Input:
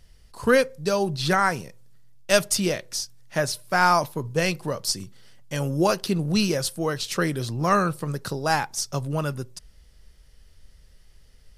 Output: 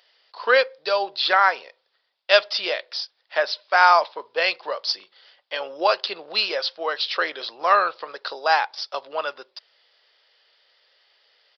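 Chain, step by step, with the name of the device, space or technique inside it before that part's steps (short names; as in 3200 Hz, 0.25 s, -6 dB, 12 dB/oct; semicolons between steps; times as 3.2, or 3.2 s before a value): musical greeting card (downsampling 11025 Hz; HPF 550 Hz 24 dB/oct; bell 3500 Hz +4.5 dB 0.48 oct); gain +4.5 dB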